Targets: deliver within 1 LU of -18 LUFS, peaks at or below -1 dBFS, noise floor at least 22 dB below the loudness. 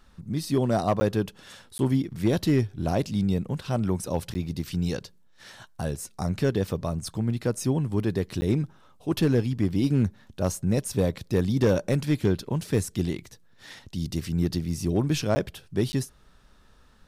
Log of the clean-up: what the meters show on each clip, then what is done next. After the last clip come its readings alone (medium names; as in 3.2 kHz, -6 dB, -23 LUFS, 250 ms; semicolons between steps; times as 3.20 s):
clipped samples 0.3%; clipping level -14.5 dBFS; dropouts 6; longest dropout 10 ms; loudness -27.0 LUFS; peak level -14.5 dBFS; loudness target -18.0 LUFS
-> clip repair -14.5 dBFS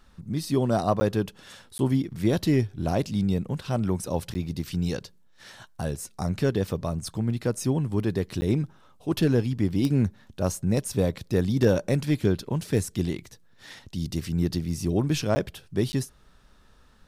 clipped samples 0.0%; dropouts 6; longest dropout 10 ms
-> interpolate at 1.00/1.78/4.34/8.41/15.35/15.92 s, 10 ms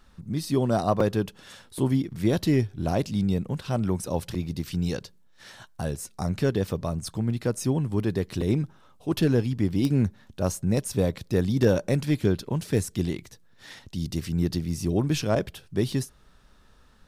dropouts 0; loudness -27.0 LUFS; peak level -7.5 dBFS; loudness target -18.0 LUFS
-> trim +9 dB; peak limiter -1 dBFS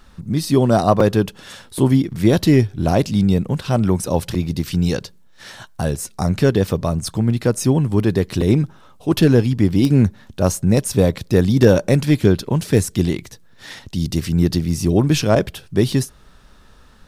loudness -18.0 LUFS; peak level -1.0 dBFS; noise floor -47 dBFS